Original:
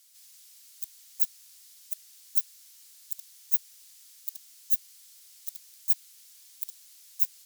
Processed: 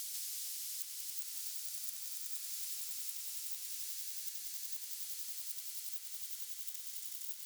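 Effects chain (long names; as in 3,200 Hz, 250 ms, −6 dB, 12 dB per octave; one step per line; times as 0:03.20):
source passing by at 0:02.20, 9 m/s, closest 6.6 metres
high-pass filter 770 Hz 12 dB per octave
reversed playback
downward compressor 6 to 1, threshold −56 dBFS, peak gain reduction 33.5 dB
reversed playback
pitch vibrato 10 Hz 31 cents
on a send: echo that builds up and dies away 93 ms, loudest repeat 5, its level −6.5 dB
on the sum: multiband upward and downward compressor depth 100%
level +14.5 dB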